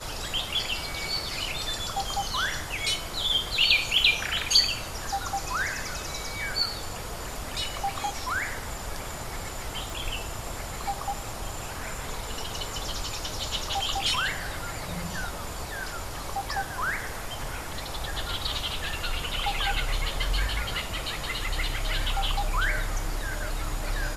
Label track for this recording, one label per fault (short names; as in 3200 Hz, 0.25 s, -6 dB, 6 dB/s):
9.900000	9.900000	pop